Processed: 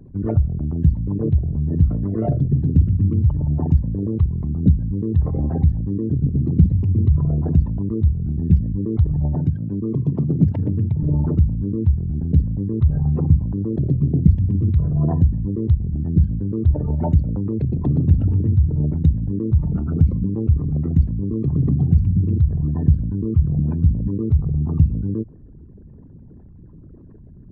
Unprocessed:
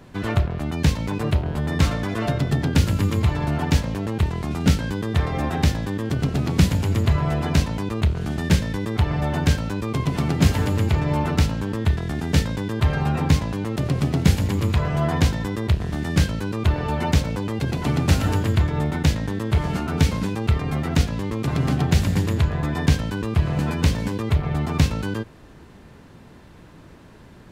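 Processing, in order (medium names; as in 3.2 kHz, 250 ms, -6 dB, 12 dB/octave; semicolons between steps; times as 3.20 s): resonances exaggerated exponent 3; 9.35–11.03 s: high-pass 98 Hz 24 dB/octave; trim +3.5 dB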